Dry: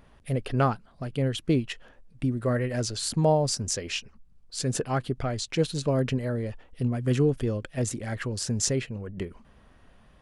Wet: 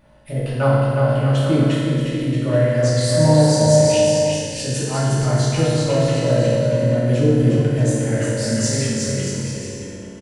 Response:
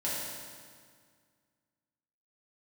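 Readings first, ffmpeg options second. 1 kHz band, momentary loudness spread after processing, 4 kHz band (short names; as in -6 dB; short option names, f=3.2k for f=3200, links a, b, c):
+6.5 dB, 10 LU, +7.5 dB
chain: -filter_complex "[0:a]acontrast=29,aecho=1:1:360|630|832.5|984.4|1098:0.631|0.398|0.251|0.158|0.1[a];[1:a]atrim=start_sample=2205[b];[a][b]afir=irnorm=-1:irlink=0,volume=-5dB"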